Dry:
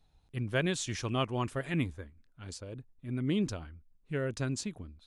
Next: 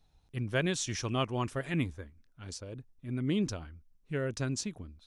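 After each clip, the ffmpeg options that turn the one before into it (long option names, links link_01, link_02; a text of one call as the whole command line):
ffmpeg -i in.wav -af "equalizer=frequency=5700:width_type=o:width=0.26:gain=6" out.wav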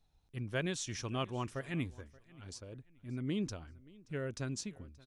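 ffmpeg -i in.wav -af "aecho=1:1:578|1156:0.0708|0.0227,volume=-5.5dB" out.wav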